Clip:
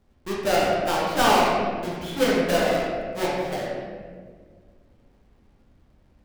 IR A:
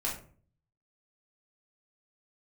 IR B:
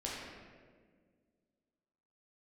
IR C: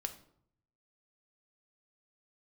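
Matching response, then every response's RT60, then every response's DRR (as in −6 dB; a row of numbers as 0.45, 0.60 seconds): B; 0.45, 1.7, 0.65 seconds; −6.0, −6.0, 6.5 decibels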